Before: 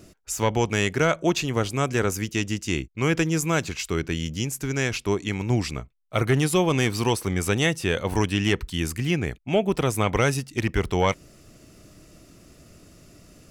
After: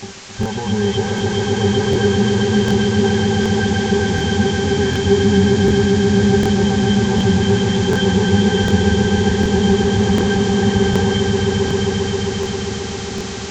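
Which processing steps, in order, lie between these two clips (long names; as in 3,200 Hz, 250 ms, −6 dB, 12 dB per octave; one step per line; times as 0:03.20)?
every frequency bin delayed by itself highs late, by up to 205 ms
high-pass filter 55 Hz 12 dB per octave
in parallel at +3 dB: compressor whose output falls as the input rises −28 dBFS, ratio −1
on the sum: fuzz pedal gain 43 dB, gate −38 dBFS
resonances in every octave G, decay 0.11 s
bit-depth reduction 6 bits, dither triangular
downsampling to 16,000 Hz
on a send: echo that builds up and dies away 133 ms, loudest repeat 5, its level −6 dB
on the sum: regular buffer underruns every 0.75 s, samples 1,024, repeat, from 0:00.41
level +3.5 dB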